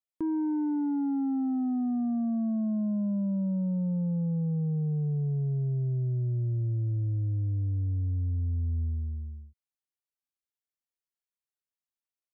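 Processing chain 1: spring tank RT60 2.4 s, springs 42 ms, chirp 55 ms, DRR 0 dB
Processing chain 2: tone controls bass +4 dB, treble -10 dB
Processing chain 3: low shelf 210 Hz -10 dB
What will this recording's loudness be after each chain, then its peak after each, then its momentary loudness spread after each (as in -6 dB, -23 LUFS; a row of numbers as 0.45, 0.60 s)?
-26.5, -26.5, -35.0 LUFS; -15.5, -22.0, -28.0 dBFS; 8, 2, 6 LU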